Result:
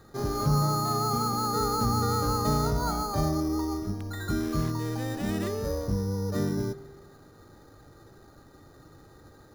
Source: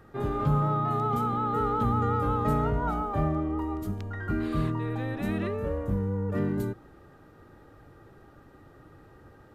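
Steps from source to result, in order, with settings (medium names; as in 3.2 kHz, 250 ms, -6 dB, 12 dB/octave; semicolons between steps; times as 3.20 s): careless resampling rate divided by 8×, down filtered, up hold; spring tank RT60 1.7 s, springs 48 ms, DRR 14.5 dB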